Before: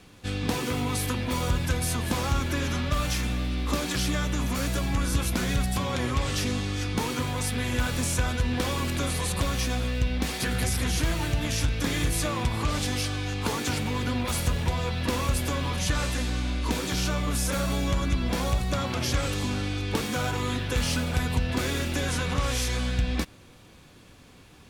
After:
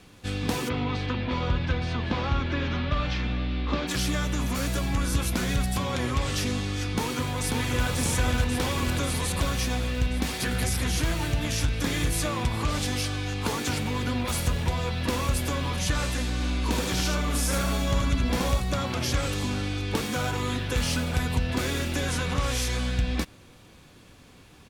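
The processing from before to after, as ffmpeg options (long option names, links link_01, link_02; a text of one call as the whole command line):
ffmpeg -i in.wav -filter_complex "[0:a]asplit=3[link_01][link_02][link_03];[link_01]afade=type=out:start_time=0.68:duration=0.02[link_04];[link_02]lowpass=frequency=4100:width=0.5412,lowpass=frequency=4100:width=1.3066,afade=type=in:start_time=0.68:duration=0.02,afade=type=out:start_time=3.87:duration=0.02[link_05];[link_03]afade=type=in:start_time=3.87:duration=0.02[link_06];[link_04][link_05][link_06]amix=inputs=3:normalize=0,asplit=2[link_07][link_08];[link_08]afade=type=in:start_time=6.89:duration=0.01,afade=type=out:start_time=7.9:duration=0.01,aecho=0:1:540|1080|1620|2160|2700|3240|3780|4320|4860|5400|5940|6480:0.630957|0.44167|0.309169|0.216418|0.151493|0.106045|0.0742315|0.0519621|0.0363734|0.0254614|0.017823|0.0124761[link_09];[link_07][link_09]amix=inputs=2:normalize=0,asplit=3[link_10][link_11][link_12];[link_10]afade=type=out:start_time=16.39:duration=0.02[link_13];[link_11]aecho=1:1:77:0.668,afade=type=in:start_time=16.39:duration=0.02,afade=type=out:start_time=18.59:duration=0.02[link_14];[link_12]afade=type=in:start_time=18.59:duration=0.02[link_15];[link_13][link_14][link_15]amix=inputs=3:normalize=0" out.wav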